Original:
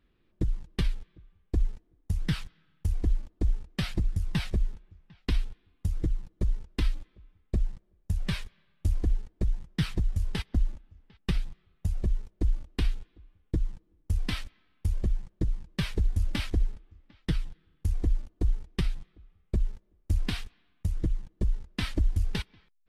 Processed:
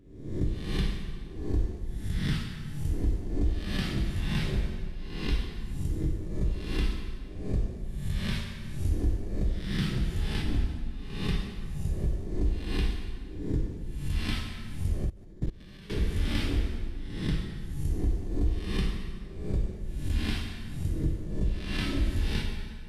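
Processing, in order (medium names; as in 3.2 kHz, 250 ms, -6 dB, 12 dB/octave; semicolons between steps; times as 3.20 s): reverse spectral sustain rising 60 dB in 0.80 s; plate-style reverb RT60 1.8 s, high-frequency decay 0.8×, DRR 0 dB; 15.04–15.90 s: level held to a coarse grid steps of 21 dB; trim -5 dB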